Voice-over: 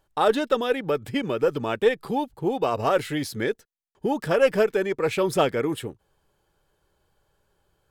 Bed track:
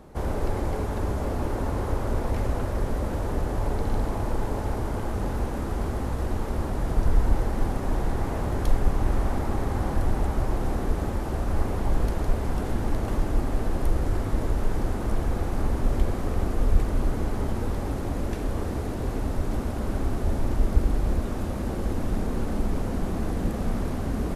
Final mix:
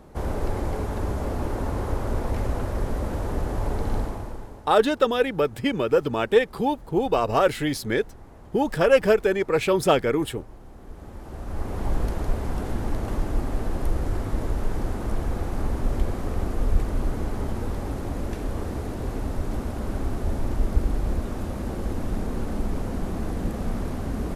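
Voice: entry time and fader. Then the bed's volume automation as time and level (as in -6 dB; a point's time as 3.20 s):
4.50 s, +2.0 dB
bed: 3.98 s 0 dB
4.74 s -19 dB
10.72 s -19 dB
11.85 s -1 dB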